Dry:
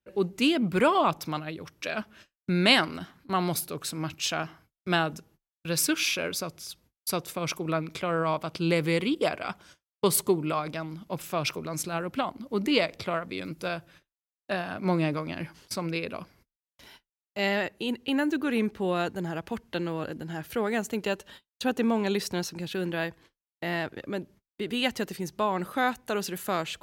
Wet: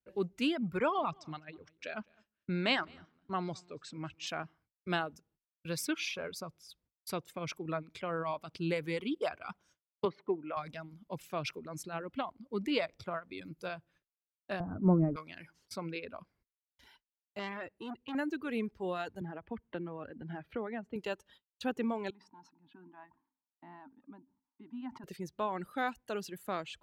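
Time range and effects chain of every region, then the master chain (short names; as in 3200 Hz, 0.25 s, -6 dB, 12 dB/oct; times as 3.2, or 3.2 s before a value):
0.77–4.27 Chebyshev low-pass 8000 Hz, order 6 + high shelf 4400 Hz -4.5 dB + echo 0.209 s -16.5 dB
10.05–10.57 BPF 250–3100 Hz + air absorption 280 m
14.6–15.16 block floating point 5-bit + LPF 1500 Hz 24 dB/oct + tilt -4 dB/oct
17.39–18.15 high shelf 4700 Hz -6.5 dB + core saturation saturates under 1700 Hz
19.21–20.96 air absorption 480 m + three-band squash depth 70%
22.1–25.04 double band-pass 490 Hz, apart 1.8 oct + sustainer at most 99 dB/s
whole clip: reverb removal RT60 1.8 s; high shelf 5600 Hz -9 dB; gain -7 dB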